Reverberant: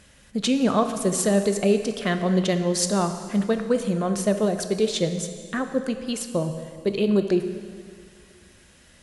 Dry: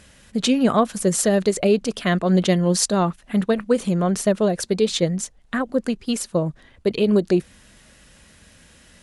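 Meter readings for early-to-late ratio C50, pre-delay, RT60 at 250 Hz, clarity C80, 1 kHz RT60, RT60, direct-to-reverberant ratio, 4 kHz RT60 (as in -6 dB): 9.0 dB, 7 ms, 2.1 s, 10.0 dB, 2.1 s, 2.1 s, 7.5 dB, 1.9 s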